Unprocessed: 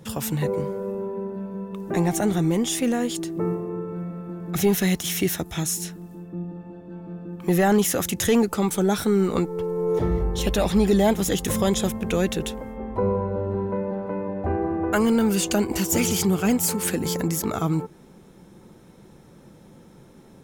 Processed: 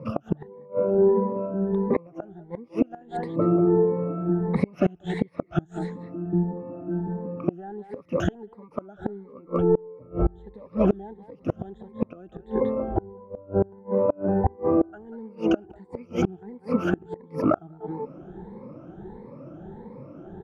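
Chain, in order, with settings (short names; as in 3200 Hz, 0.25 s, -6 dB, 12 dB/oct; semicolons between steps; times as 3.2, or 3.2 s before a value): moving spectral ripple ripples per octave 0.94, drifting +1.5 Hz, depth 23 dB; Bessel low-pass 640 Hz, order 2; low shelf 300 Hz -8.5 dB; speakerphone echo 0.19 s, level -10 dB; flipped gate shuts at -18 dBFS, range -30 dB; gain +8.5 dB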